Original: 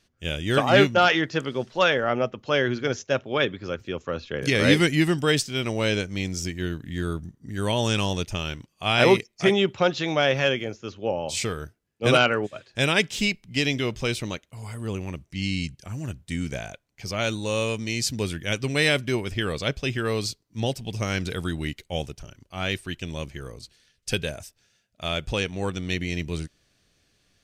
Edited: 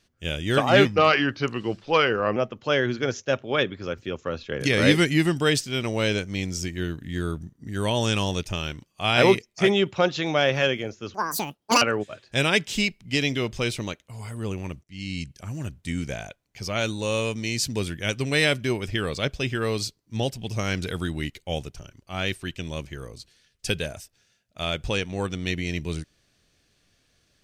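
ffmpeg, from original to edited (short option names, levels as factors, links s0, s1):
-filter_complex "[0:a]asplit=6[s0][s1][s2][s3][s4][s5];[s0]atrim=end=0.854[s6];[s1]atrim=start=0.85:end=2.18,asetpts=PTS-STARTPTS,asetrate=38808,aresample=44100,atrim=end_sample=66651,asetpts=PTS-STARTPTS[s7];[s2]atrim=start=2.176:end=10.964[s8];[s3]atrim=start=10.96:end=12.25,asetpts=PTS-STARTPTS,asetrate=84231,aresample=44100[s9];[s4]atrim=start=12.246:end=15.27,asetpts=PTS-STARTPTS,afade=t=out:st=3.02:d=0.004:c=hsin:silence=0.1[s10];[s5]atrim=start=15.27,asetpts=PTS-STARTPTS,afade=t=in:d=0.5:silence=0.1[s11];[s6][s7]acrossfade=d=0.004:c1=hsin:c2=hsin[s12];[s12][s8]acrossfade=d=0.004:c1=hsin:c2=hsin[s13];[s13][s9]acrossfade=d=0.004:c1=hsin:c2=hsin[s14];[s10][s11]concat=n=2:v=0:a=1[s15];[s14][s15]acrossfade=d=0.004:c1=hsin:c2=hsin"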